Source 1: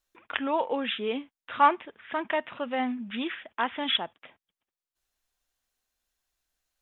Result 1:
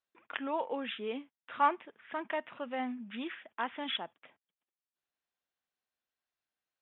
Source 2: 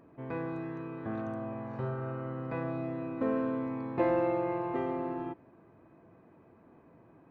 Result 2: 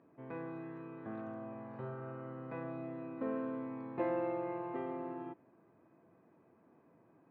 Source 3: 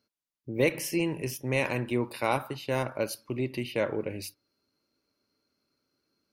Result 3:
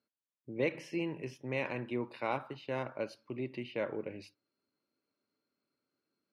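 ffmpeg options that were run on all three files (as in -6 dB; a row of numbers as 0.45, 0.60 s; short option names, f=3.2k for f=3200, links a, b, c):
-af "highpass=130,lowpass=3.4k,volume=-7dB"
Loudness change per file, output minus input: -7.5, -7.5, -7.5 LU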